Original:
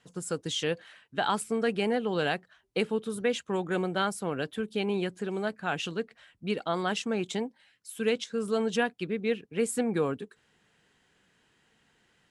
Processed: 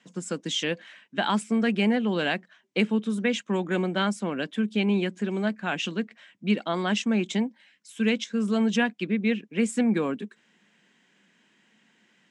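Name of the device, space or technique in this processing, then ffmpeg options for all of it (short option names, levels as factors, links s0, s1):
television speaker: -af "highpass=f=180:w=0.5412,highpass=f=180:w=1.3066,equalizer=f=210:t=q:w=4:g=7,equalizer=f=450:t=q:w=4:g=-7,equalizer=f=780:t=q:w=4:g=-5,equalizer=f=1300:t=q:w=4:g=-5,equalizer=f=2200:t=q:w=4:g=3,equalizer=f=4400:t=q:w=4:g=-5,lowpass=f=7600:w=0.5412,lowpass=f=7600:w=1.3066,volume=1.68"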